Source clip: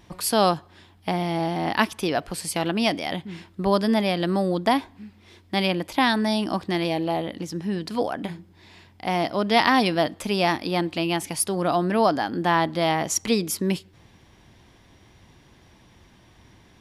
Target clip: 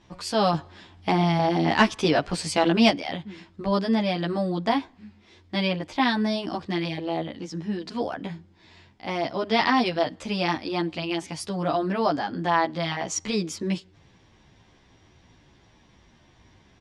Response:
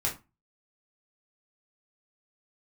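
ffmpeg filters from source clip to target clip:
-filter_complex "[0:a]lowpass=f=7.4k:w=0.5412,lowpass=f=7.4k:w=1.3066,asettb=1/sr,asplit=3[a][b][c];[a]atrim=end=0.534[d];[b]atrim=start=0.53:end=2.9,asetpts=PTS-STARTPTS,afade=t=in:d=0.004:c=qsin,afade=t=out:st=2.366:d=0.004:c=qsin,acontrast=72[e];[c]atrim=start=2.896[f];[d][e]acrossfade=d=0.004:c1=hsin:c2=qsin[g];[g][f]acrossfade=d=0.004:c1=qsin:c2=hsin,asplit=2[h][i];[i]adelay=11.6,afreqshift=-2.7[j];[h][j]amix=inputs=2:normalize=1"

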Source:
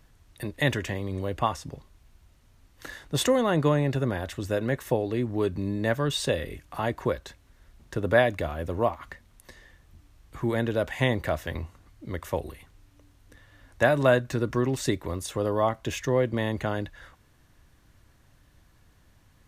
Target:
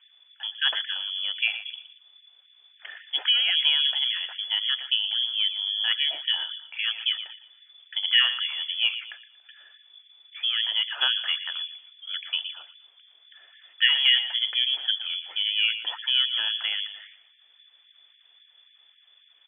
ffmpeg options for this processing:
-filter_complex "[0:a]asettb=1/sr,asplit=3[a][b][c];[a]atrim=end=12.424[d];[b]atrim=start=12.42:end=13.88,asetpts=PTS-STARTPTS,afade=t=in:d=0.004:c=qsin,afade=t=out:st=1.456:d=0.004:c=qsin,aemphasis=mode=production:type=75kf[e];[c]atrim=start=13.876[f];[d][e]acrossfade=d=0.004:c1=hsin:c2=qsin[g];[g][f]acrossfade=d=0.004:c1=qsin:c2=hsin,asplit=2[h][i];[i]adelay=117,lowpass=f=1.8k:p=1,volume=-11dB,asplit=2[j][k];[k]adelay=117,lowpass=f=1.8k:p=1,volume=0.37,asplit=2[l][m];[m]adelay=117,lowpass=f=1.8k:p=1,volume=0.37,asplit=2[n][o];[o]adelay=117,lowpass=f=1.8k:p=1,volume=0.37[p];[j][l][n][p]amix=inputs=4:normalize=0[q];[h][q]amix=inputs=2:normalize=0,lowpass=f=3k:t=q:w=0.5098,lowpass=f=3k:t=q:w=0.6013,lowpass=f=3k:t=q:w=0.9,lowpass=f=3k:t=q:w=2.563,afreqshift=-3500,afftfilt=real='re*gte(b*sr/1024,270*pow(1700/270,0.5+0.5*sin(2*PI*3.7*pts/sr)))':imag='im*gte(b*sr/1024,270*pow(1700/270,0.5+0.5*sin(2*PI*3.7*pts/sr)))':win_size=1024:overlap=0.75"

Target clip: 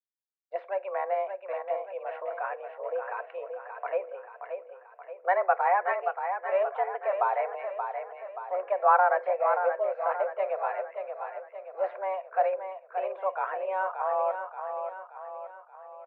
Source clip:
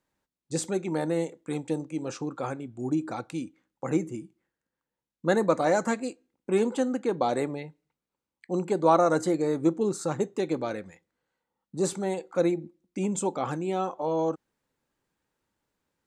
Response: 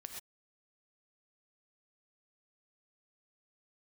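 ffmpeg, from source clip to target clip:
-af "agate=range=-33dB:threshold=-45dB:ratio=3:detection=peak,highpass=f=350:t=q:w=0.5412,highpass=f=350:t=q:w=1.307,lowpass=f=2.2k:t=q:w=0.5176,lowpass=f=2.2k:t=q:w=0.7071,lowpass=f=2.2k:t=q:w=1.932,afreqshift=190,aecho=1:1:578|1156|1734|2312|2890|3468:0.447|0.223|0.112|0.0558|0.0279|0.014"

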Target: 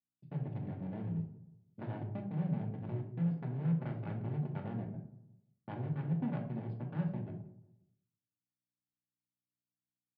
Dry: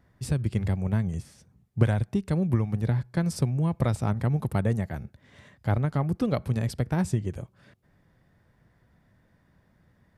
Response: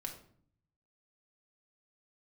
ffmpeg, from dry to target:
-filter_complex "[0:a]afwtdn=0.0251,aeval=exprs='val(0)+0.0112*(sin(2*PI*60*n/s)+sin(2*PI*2*60*n/s)/2+sin(2*PI*3*60*n/s)/3+sin(2*PI*4*60*n/s)/4+sin(2*PI*5*60*n/s)/5)':c=same,acrossover=split=280|830[a][b][c];[a]acontrast=20[d];[b]asoftclip=type=tanh:threshold=-33dB[e];[d][e][c]amix=inputs=3:normalize=0,agate=range=-49dB:threshold=-26dB:ratio=16:detection=peak,aresample=11025,volume=22.5dB,asoftclip=hard,volume=-22.5dB,aresample=44100,highpass=f=150:w=0.5412,highpass=f=150:w=1.3066,equalizer=f=200:t=q:w=4:g=-6,equalizer=f=320:t=q:w=4:g=-7,equalizer=f=500:t=q:w=4:g=-8,equalizer=f=1.2k:t=q:w=4:g=-8,lowpass=f=3.3k:w=0.5412,lowpass=f=3.3k:w=1.3066,asplit=2[f][g];[g]adelay=176,lowpass=f=1.2k:p=1,volume=-18.5dB,asplit=2[h][i];[i]adelay=176,lowpass=f=1.2k:p=1,volume=0.41,asplit=2[j][k];[k]adelay=176,lowpass=f=1.2k:p=1,volume=0.41[l];[f][h][j][l]amix=inputs=4:normalize=0[m];[1:a]atrim=start_sample=2205,asetrate=48510,aresample=44100[n];[m][n]afir=irnorm=-1:irlink=0,volume=-3.5dB"

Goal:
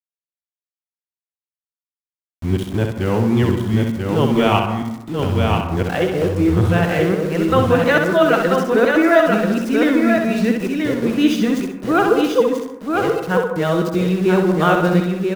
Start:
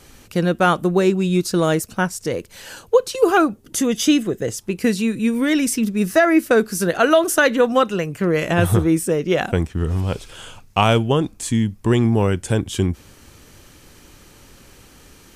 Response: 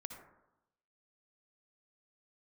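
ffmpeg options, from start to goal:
-filter_complex "[0:a]areverse,lowpass=3.7k,aeval=exprs='val(0)*gte(abs(val(0)),0.0335)':c=same,aecho=1:1:986:0.631,asplit=2[a][b];[1:a]atrim=start_sample=2205,adelay=65[c];[b][c]afir=irnorm=-1:irlink=0,volume=-0.5dB[d];[a][d]amix=inputs=2:normalize=0,volume=-1dB"

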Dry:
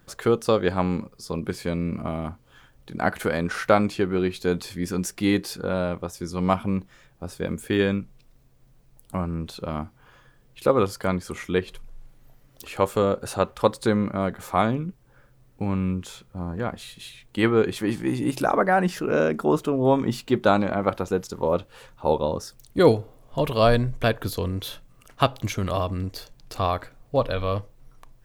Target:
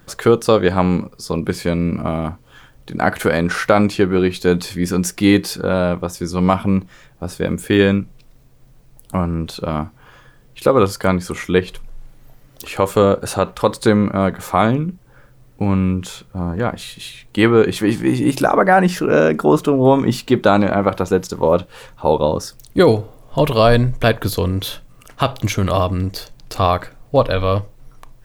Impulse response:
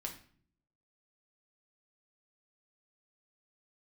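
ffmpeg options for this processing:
-filter_complex "[0:a]asplit=2[a][b];[1:a]atrim=start_sample=2205,atrim=end_sample=3528[c];[b][c]afir=irnorm=-1:irlink=0,volume=-15dB[d];[a][d]amix=inputs=2:normalize=0,alimiter=level_in=8.5dB:limit=-1dB:release=50:level=0:latency=1,volume=-1dB"

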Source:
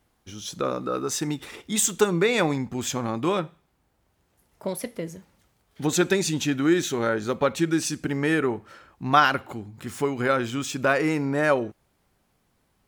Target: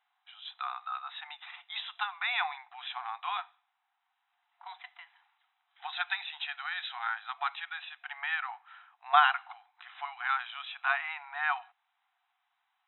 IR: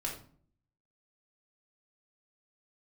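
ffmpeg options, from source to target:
-af "afftfilt=real='re*between(b*sr/4096,690,4000)':imag='im*between(b*sr/4096,690,4000)':win_size=4096:overlap=0.75,volume=-4dB"

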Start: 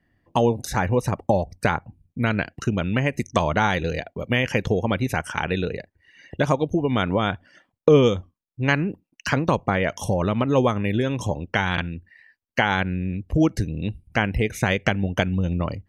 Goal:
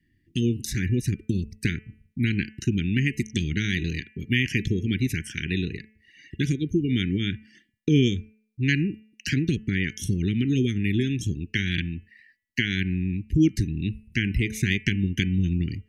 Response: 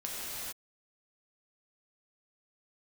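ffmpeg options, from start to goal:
-af "asuperstop=centerf=820:order=12:qfactor=0.58,bandreject=f=216.7:t=h:w=4,bandreject=f=433.4:t=h:w=4,bandreject=f=650.1:t=h:w=4,bandreject=f=866.8:t=h:w=4,bandreject=f=1.0835k:t=h:w=4,bandreject=f=1.3002k:t=h:w=4,bandreject=f=1.5169k:t=h:w=4,bandreject=f=1.7336k:t=h:w=4,bandreject=f=1.9503k:t=h:w=4,bandreject=f=2.167k:t=h:w=4,bandreject=f=2.3837k:t=h:w=4,bandreject=f=2.6004k:t=h:w=4,bandreject=f=2.8171k:t=h:w=4,bandreject=f=3.0338k:t=h:w=4"

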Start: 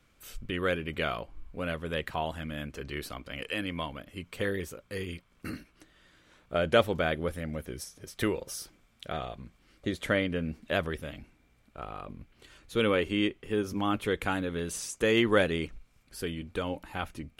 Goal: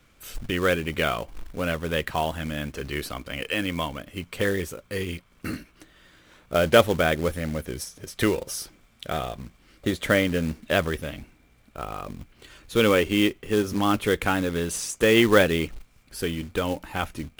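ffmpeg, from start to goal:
-af "acrusher=bits=4:mode=log:mix=0:aa=0.000001,volume=6.5dB"

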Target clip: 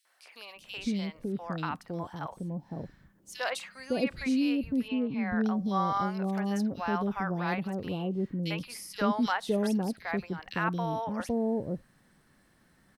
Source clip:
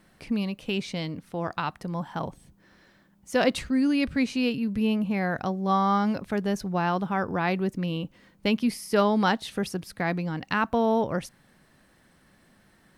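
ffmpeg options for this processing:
-filter_complex "[0:a]asettb=1/sr,asplit=3[a][b][c];[a]atrim=end=4.884[d];[b]atrim=start=4.88:end=5.45,asetpts=PTS-STARTPTS,afade=t=in:d=0.004:c=qsin,afade=t=out:st=0.566:d=0.004:c=qsin,lowpass=f=4k:w=0.5412,lowpass=f=4k:w=1.3066[e];[c]atrim=start=5.446[f];[d][e]acrossfade=d=0.004:c1=hsin:c2=qsin[g];[g][f]acrossfade=d=0.004:c1=qsin:c2=hsin,acrossover=split=620|2900[h][i][j];[i]adelay=50[k];[h]adelay=560[l];[l][k][j]amix=inputs=3:normalize=0,volume=-3.5dB"

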